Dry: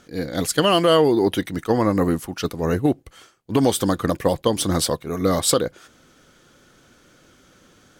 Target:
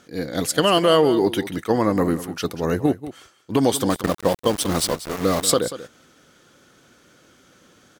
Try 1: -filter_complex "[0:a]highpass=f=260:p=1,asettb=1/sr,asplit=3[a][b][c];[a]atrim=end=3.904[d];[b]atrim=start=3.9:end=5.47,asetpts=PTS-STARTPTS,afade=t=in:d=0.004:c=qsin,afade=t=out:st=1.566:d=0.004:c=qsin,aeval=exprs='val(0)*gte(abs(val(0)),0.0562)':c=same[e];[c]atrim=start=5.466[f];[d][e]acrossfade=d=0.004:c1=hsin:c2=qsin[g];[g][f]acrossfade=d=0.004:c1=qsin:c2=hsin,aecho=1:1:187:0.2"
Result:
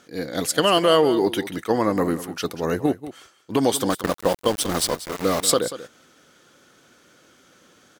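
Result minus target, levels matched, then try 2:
125 Hz band -3.0 dB
-filter_complex "[0:a]highpass=f=110:p=1,asettb=1/sr,asplit=3[a][b][c];[a]atrim=end=3.904[d];[b]atrim=start=3.9:end=5.47,asetpts=PTS-STARTPTS,afade=t=in:d=0.004:c=qsin,afade=t=out:st=1.566:d=0.004:c=qsin,aeval=exprs='val(0)*gte(abs(val(0)),0.0562)':c=same[e];[c]atrim=start=5.466[f];[d][e]acrossfade=d=0.004:c1=hsin:c2=qsin[g];[g][f]acrossfade=d=0.004:c1=qsin:c2=hsin,aecho=1:1:187:0.2"

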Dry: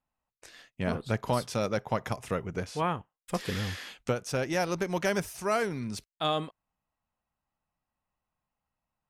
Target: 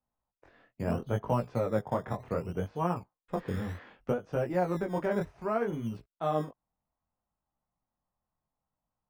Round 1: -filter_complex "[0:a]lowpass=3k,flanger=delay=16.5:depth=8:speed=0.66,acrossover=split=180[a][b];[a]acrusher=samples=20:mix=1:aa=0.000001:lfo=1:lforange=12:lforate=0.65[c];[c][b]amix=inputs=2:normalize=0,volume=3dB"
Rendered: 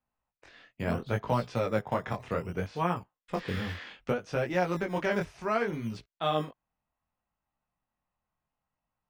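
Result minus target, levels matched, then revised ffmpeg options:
4000 Hz band +10.0 dB
-filter_complex "[0:a]lowpass=1.1k,flanger=delay=16.5:depth=8:speed=0.66,acrossover=split=180[a][b];[a]acrusher=samples=20:mix=1:aa=0.000001:lfo=1:lforange=12:lforate=0.65[c];[c][b]amix=inputs=2:normalize=0,volume=3dB"

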